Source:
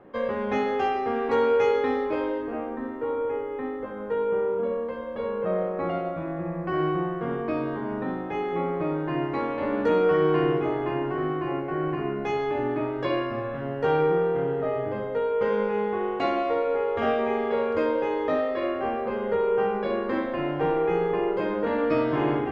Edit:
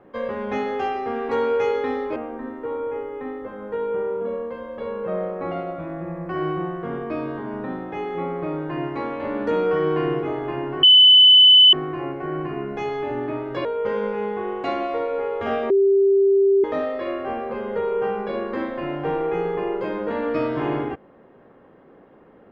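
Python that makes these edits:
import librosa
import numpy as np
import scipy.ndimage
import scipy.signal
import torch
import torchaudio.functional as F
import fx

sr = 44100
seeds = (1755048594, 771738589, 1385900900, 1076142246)

y = fx.edit(x, sr, fx.cut(start_s=2.16, length_s=0.38),
    fx.insert_tone(at_s=11.21, length_s=0.9, hz=3010.0, db=-7.5),
    fx.cut(start_s=13.13, length_s=2.08),
    fx.bleep(start_s=17.26, length_s=0.94, hz=393.0, db=-13.0), tone=tone)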